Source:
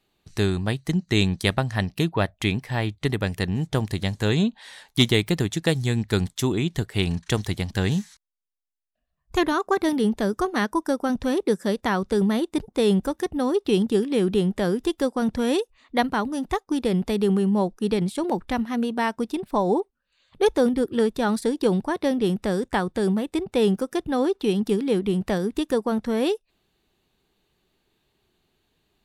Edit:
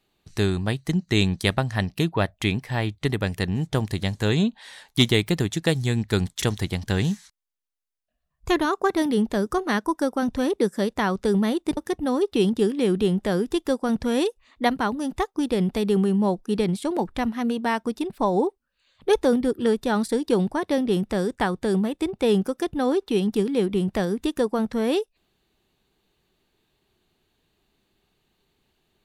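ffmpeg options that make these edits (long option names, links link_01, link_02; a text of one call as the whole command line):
ffmpeg -i in.wav -filter_complex "[0:a]asplit=3[link_01][link_02][link_03];[link_01]atrim=end=6.422[link_04];[link_02]atrim=start=7.288:end=12.642[link_05];[link_03]atrim=start=13.098[link_06];[link_04][link_05]acrossfade=duration=0.004:curve1=hsin:curve2=hsin[link_07];[link_07][link_06]acrossfade=duration=0.004:curve1=hsin:curve2=hsin" out.wav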